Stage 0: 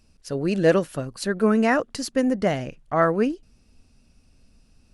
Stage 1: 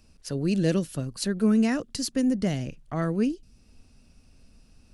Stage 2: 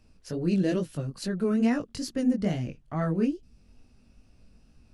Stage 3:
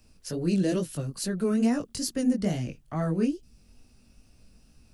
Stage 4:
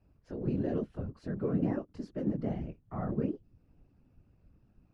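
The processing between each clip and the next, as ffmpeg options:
-filter_complex "[0:a]acrossover=split=310|3000[a][b][c];[b]acompressor=threshold=-48dB:ratio=2[d];[a][d][c]amix=inputs=3:normalize=0,volume=1.5dB"
-af "highshelf=f=3.8k:g=-8.5,flanger=delay=16.5:depth=5.4:speed=2.3,volume=2dB"
-filter_complex "[0:a]acrossover=split=320|1100|5200[a][b][c][d];[c]alimiter=level_in=13.5dB:limit=-24dB:level=0:latency=1,volume=-13.5dB[e];[a][b][e][d]amix=inputs=4:normalize=0,crystalizer=i=2:c=0"
-af "lowpass=1.4k,afftfilt=real='hypot(re,im)*cos(2*PI*random(0))':imag='hypot(re,im)*sin(2*PI*random(1))':win_size=512:overlap=0.75"

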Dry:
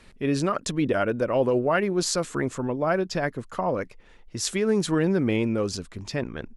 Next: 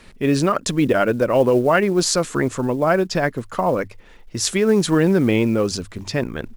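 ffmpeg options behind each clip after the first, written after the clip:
-af "acrusher=bits=8:mode=log:mix=0:aa=0.000001,bandreject=f=50:t=h:w=6,bandreject=f=100:t=h:w=6,volume=6.5dB"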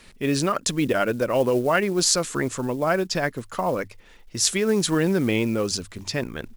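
-af "highshelf=f=2.4k:g=7.5,volume=-5.5dB"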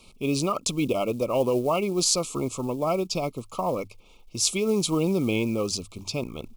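-af "asuperstop=centerf=1700:order=20:qfactor=2,volume=-2.5dB"

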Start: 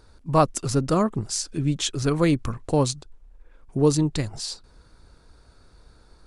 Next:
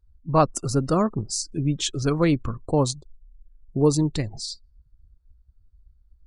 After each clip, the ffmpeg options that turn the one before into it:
-af "afftdn=nr=34:nf=-39"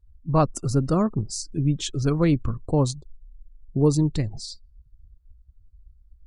-af "lowshelf=f=280:g=8,volume=-4dB"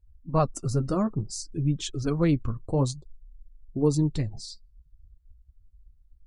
-af "flanger=delay=0.3:depth=9.7:regen=-45:speed=0.57:shape=triangular"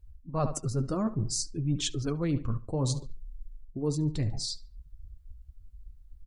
-filter_complex "[0:a]asplit=2[a][b];[b]adelay=72,lowpass=f=3.7k:p=1,volume=-18.5dB,asplit=2[c][d];[d]adelay=72,lowpass=f=3.7k:p=1,volume=0.38,asplit=2[e][f];[f]adelay=72,lowpass=f=3.7k:p=1,volume=0.38[g];[a][c][e][g]amix=inputs=4:normalize=0,areverse,acompressor=threshold=-33dB:ratio=6,areverse,volume=6.5dB"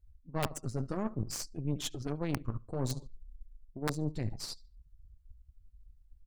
-af "aeval=exprs='(mod(8.41*val(0)+1,2)-1)/8.41':c=same,aeval=exprs='0.126*(cos(1*acos(clip(val(0)/0.126,-1,1)))-cos(1*PI/2))+0.0178*(cos(3*acos(clip(val(0)/0.126,-1,1)))-cos(3*PI/2))+0.0178*(cos(4*acos(clip(val(0)/0.126,-1,1)))-cos(4*PI/2))':c=same,volume=-4dB"

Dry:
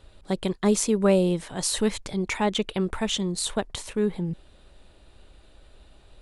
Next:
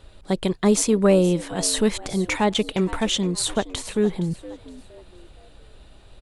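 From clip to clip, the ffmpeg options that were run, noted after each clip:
-filter_complex "[0:a]acontrast=51,asplit=4[a][b][c][d];[b]adelay=467,afreqshift=90,volume=-17.5dB[e];[c]adelay=934,afreqshift=180,volume=-26.9dB[f];[d]adelay=1401,afreqshift=270,volume=-36.2dB[g];[a][e][f][g]amix=inputs=4:normalize=0,volume=-2dB"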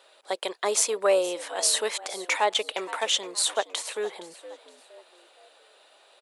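-af "highpass=f=510:w=0.5412,highpass=f=510:w=1.3066"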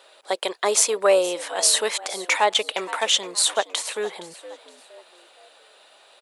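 -af "asubboost=boost=4:cutoff=160,volume=5dB"

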